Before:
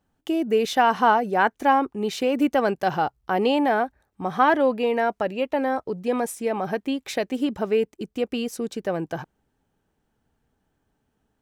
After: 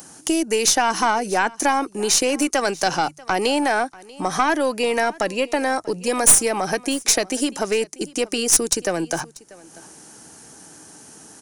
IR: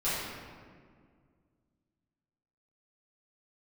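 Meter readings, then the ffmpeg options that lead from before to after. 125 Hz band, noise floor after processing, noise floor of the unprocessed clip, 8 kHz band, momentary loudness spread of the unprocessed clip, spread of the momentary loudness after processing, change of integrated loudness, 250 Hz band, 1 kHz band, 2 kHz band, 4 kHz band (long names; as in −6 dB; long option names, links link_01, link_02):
+0.5 dB, −47 dBFS, −75 dBFS, +23.5 dB, 10 LU, 8 LU, +3.5 dB, +0.5 dB, 0.0 dB, +4.0 dB, +10.0 dB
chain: -filter_complex "[0:a]aresample=22050,aresample=44100,equalizer=frequency=160:width_type=o:width=0.33:gain=6,equalizer=frequency=315:width_type=o:width=0.33:gain=8,equalizer=frequency=4000:width_type=o:width=0.33:gain=4,equalizer=frequency=8000:width_type=o:width=0.33:gain=-9,acrossover=split=340|1500[link_01][link_02][link_03];[link_01]acompressor=threshold=-33dB:ratio=4[link_04];[link_02]acompressor=threshold=-28dB:ratio=4[link_05];[link_03]acompressor=threshold=-34dB:ratio=4[link_06];[link_04][link_05][link_06]amix=inputs=3:normalize=0,lowshelf=frequency=420:gain=-9.5,aexciter=amount=12.4:drive=4.8:freq=5500,highpass=110,aeval=exprs='0.631*(cos(1*acos(clip(val(0)/0.631,-1,1)))-cos(1*PI/2))+0.282*(cos(5*acos(clip(val(0)/0.631,-1,1)))-cos(5*PI/2))+0.141*(cos(6*acos(clip(val(0)/0.631,-1,1)))-cos(6*PI/2))':channel_layout=same,acompressor=mode=upward:threshold=-28dB:ratio=2.5,bandreject=frequency=50:width_type=h:width=6,bandreject=frequency=100:width_type=h:width=6,bandreject=frequency=150:width_type=h:width=6,asplit=2[link_07][link_08];[link_08]aecho=0:1:639:0.0794[link_09];[link_07][link_09]amix=inputs=2:normalize=0"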